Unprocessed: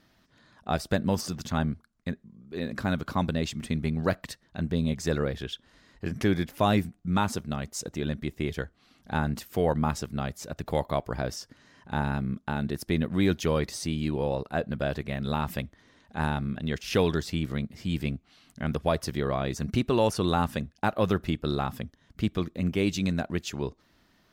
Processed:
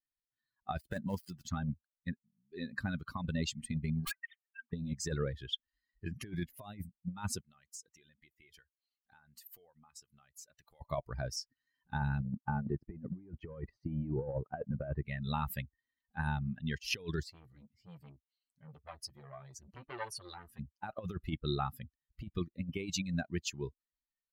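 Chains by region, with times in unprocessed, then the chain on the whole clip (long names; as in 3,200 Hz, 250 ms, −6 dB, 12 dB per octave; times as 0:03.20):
0:00.78–0:01.45: gap after every zero crossing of 0.091 ms + low-shelf EQ 200 Hz −3.5 dB
0:04.05–0:04.73: three sine waves on the formant tracks + high-pass filter 1,400 Hz + wrap-around overflow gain 28.5 dB
0:07.41–0:10.81: low-shelf EQ 450 Hz −11 dB + downward compressor 8 to 1, threshold −39 dBFS
0:12.20–0:15.03: low-pass filter 1,400 Hz + leveller curve on the samples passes 1
0:17.23–0:20.59: flanger 1.4 Hz, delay 5.9 ms, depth 5.5 ms, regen −48% + saturating transformer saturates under 1,800 Hz
whole clip: spectral dynamics exaggerated over time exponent 2; compressor whose output falls as the input rises −34 dBFS, ratio −0.5; level −1 dB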